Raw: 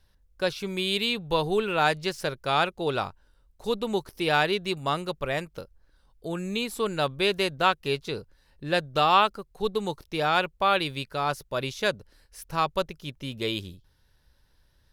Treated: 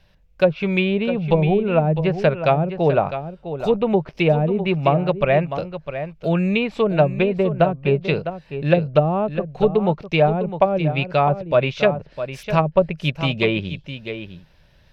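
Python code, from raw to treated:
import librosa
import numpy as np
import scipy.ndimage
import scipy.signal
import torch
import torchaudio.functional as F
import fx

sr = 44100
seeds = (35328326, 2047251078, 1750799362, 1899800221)

p1 = fx.env_lowpass_down(x, sr, base_hz=350.0, full_db=-20.0)
p2 = fx.graphic_eq_15(p1, sr, hz=(160, 630, 2500, 10000), db=(11, 10, 11, -12))
p3 = fx.rider(p2, sr, range_db=10, speed_s=0.5)
p4 = p2 + (p3 * librosa.db_to_amplitude(-0.5))
y = p4 + 10.0 ** (-10.5 / 20.0) * np.pad(p4, (int(655 * sr / 1000.0), 0))[:len(p4)]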